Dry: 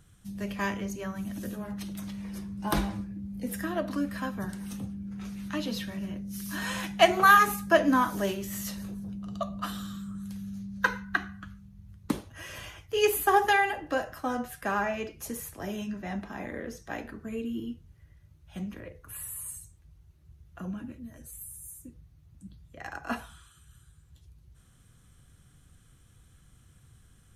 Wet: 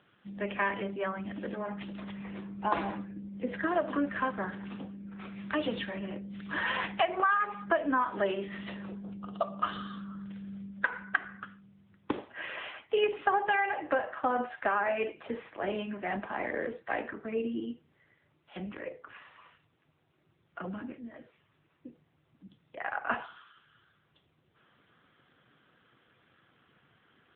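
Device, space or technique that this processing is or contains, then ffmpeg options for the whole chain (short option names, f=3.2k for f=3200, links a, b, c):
voicemail: -filter_complex "[0:a]asettb=1/sr,asplit=3[a][b][c];[a]atrim=end=4.754[d];[b]atrim=start=4.75:end=5.34,asetpts=PTS-STARTPTS,afade=t=in:d=0.004:c=qsin,afade=t=out:st=0.586:d=0.004:c=qsin,highpass=f=140:p=1[e];[c]atrim=start=5.336[f];[d][e]acrossfade=d=0.004:c1=hsin:c2=qsin[g];[g][f]acrossfade=d=0.004:c1=qsin:c2=hsin,highpass=380,lowpass=3.1k,acompressor=threshold=-31dB:ratio=8,volume=7.5dB" -ar 8000 -c:a libopencore_amrnb -b:a 7950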